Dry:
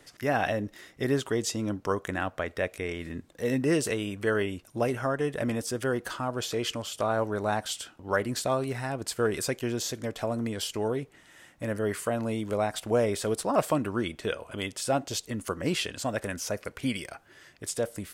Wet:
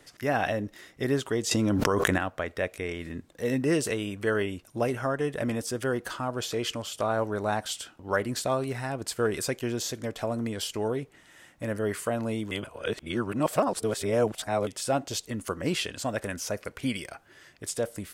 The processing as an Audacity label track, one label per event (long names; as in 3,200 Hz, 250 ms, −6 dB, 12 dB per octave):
1.510000	2.180000	envelope flattener amount 100%
12.510000	14.670000	reverse